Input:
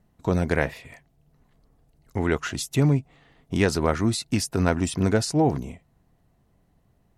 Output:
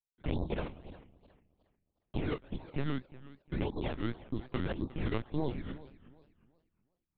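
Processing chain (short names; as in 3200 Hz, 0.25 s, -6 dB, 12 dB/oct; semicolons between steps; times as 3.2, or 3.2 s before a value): FFT order left unsorted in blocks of 32 samples; steep low-pass 940 Hz 48 dB/oct; gate -52 dBFS, range -48 dB; 2.89–5.06 low shelf 370 Hz -4.5 dB; compressor 2.5:1, threshold -36 dBFS, peak gain reduction 13 dB; AM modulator 140 Hz, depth 70%; decimation with a swept rate 18×, swing 100% 1.8 Hz; LPC vocoder at 8 kHz pitch kept; warbling echo 0.363 s, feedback 30%, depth 164 cents, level -18 dB; gain +4.5 dB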